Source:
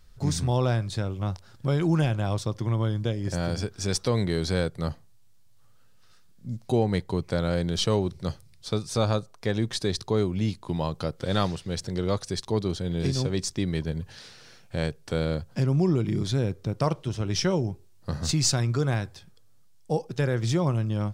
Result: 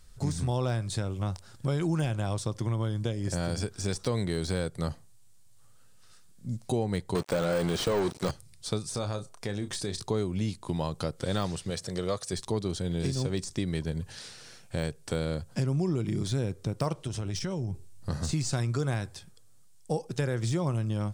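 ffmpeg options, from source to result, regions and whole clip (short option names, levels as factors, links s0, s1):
-filter_complex "[0:a]asettb=1/sr,asplit=3[s0][s1][s2];[s0]atrim=end=7.154[s3];[s1]atrim=start=7.15:end=8.31,asetpts=PTS-STARTPTS,afade=t=in:d=0.004:c=qsin,afade=t=out:st=1.156:d=0.004:c=qsin,aeval=exprs='sgn(val(0))*max(abs(val(0))-0.00501,0)':c=same,asplit=2[s4][s5];[s5]highpass=f=720:p=1,volume=20,asoftclip=type=tanh:threshold=0.251[s6];[s4][s6]amix=inputs=2:normalize=0,lowpass=f=6500:p=1,volume=0.501[s7];[s2]atrim=start=8.306[s8];[s3][s7]acrossfade=d=0.004:c1=hsin:c2=qsin[s9];[s9][s8]acrossfade=d=0.004:c1=qsin:c2=hsin,asettb=1/sr,asplit=3[s10][s11][s12];[s10]atrim=end=8.944[s13];[s11]atrim=start=8.94:end=10.03,asetpts=PTS-STARTPTS,afade=t=in:d=0.004:c=qsin,afade=t=out:st=1.086:d=0.004:c=qsin,bandreject=f=4000:w=24,asplit=2[s14][s15];[s15]adelay=30,volume=0.299[s16];[s14][s16]amix=inputs=2:normalize=0,atrim=end_sample=48069,acompressor=threshold=0.0282:ratio=2.5:attack=3.2:release=140:knee=1:detection=peak[s17];[s12]atrim=start=10.026[s18];[s13][s17]acrossfade=d=0.004:c1=hsin:c2=qsin[s19];[s19][s18]acrossfade=d=0.004:c1=qsin:c2=hsin,asettb=1/sr,asplit=3[s20][s21][s22];[s20]atrim=end=11.704[s23];[s21]atrim=start=11.7:end=12.33,asetpts=PTS-STARTPTS,afade=t=in:d=0.004:c=qsin,afade=t=out:st=0.626:d=0.004:c=qsin,highpass=f=210:p=1,aecho=1:1:1.7:0.33,atrim=end_sample=27783[s24];[s22]atrim=start=12.326[s25];[s23][s24]acrossfade=d=0.004:c1=hsin:c2=qsin[s26];[s26][s25]acrossfade=d=0.004:c1=qsin:c2=hsin,asettb=1/sr,asplit=3[s27][s28][s29];[s27]atrim=end=17.064[s30];[s28]atrim=start=17.06:end=18.1,asetpts=PTS-STARTPTS,afade=t=in:d=0.004:c=qsin,afade=t=out:st=1.036:d=0.004:c=qsin,asubboost=boost=6:cutoff=240,acompressor=threshold=0.0398:ratio=6:attack=3.2:release=140:knee=1:detection=peak[s31];[s29]atrim=start=18.096[s32];[s30][s31]acrossfade=d=0.004:c1=hsin:c2=qsin[s33];[s33][s32]acrossfade=d=0.004:c1=qsin:c2=hsin,deesser=0.85,equalizer=f=8600:w=1.4:g=10,acompressor=threshold=0.0447:ratio=2.5"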